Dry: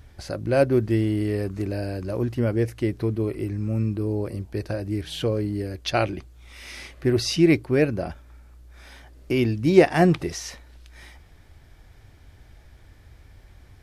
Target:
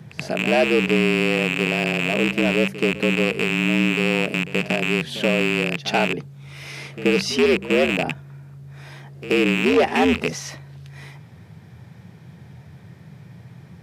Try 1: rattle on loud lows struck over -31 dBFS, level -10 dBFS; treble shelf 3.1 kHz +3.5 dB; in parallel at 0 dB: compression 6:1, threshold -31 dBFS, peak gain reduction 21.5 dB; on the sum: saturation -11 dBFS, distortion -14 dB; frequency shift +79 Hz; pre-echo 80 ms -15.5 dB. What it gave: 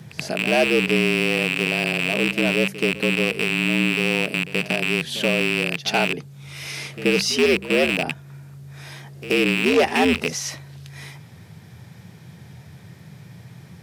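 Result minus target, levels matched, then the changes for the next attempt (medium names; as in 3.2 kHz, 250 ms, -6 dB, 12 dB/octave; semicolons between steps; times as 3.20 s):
compression: peak gain reduction +7 dB; 8 kHz band +4.5 dB
change: treble shelf 3.1 kHz -6 dB; change: compression 6:1, threshold -23 dBFS, peak gain reduction 14.5 dB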